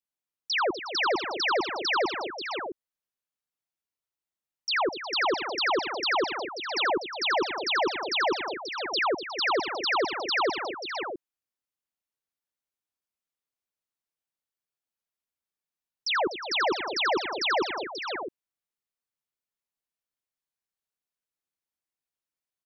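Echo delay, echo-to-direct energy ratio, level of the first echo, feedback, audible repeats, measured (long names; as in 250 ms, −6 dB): 85 ms, −4.5 dB, −13.5 dB, repeats not evenly spaced, 6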